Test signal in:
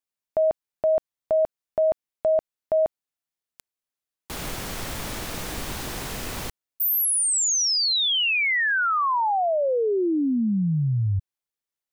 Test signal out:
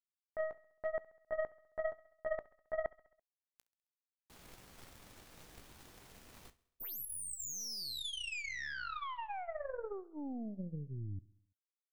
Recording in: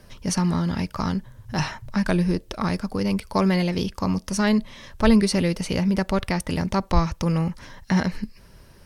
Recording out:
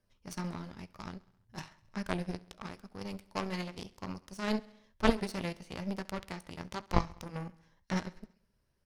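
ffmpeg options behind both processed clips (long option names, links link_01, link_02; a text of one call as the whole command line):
ffmpeg -i in.wav -af "flanger=delay=9.7:depth=8.3:regen=-51:speed=1:shape=sinusoidal,aeval=exprs='0.422*(cos(1*acos(clip(val(0)/0.422,-1,1)))-cos(1*PI/2))+0.0422*(cos(2*acos(clip(val(0)/0.422,-1,1)))-cos(2*PI/2))+0.106*(cos(3*acos(clip(val(0)/0.422,-1,1)))-cos(3*PI/2))+0.0119*(cos(7*acos(clip(val(0)/0.422,-1,1)))-cos(7*PI/2))':channel_layout=same,aecho=1:1:67|134|201|268|335:0.0841|0.0505|0.0303|0.0182|0.0109,volume=2.5dB" out.wav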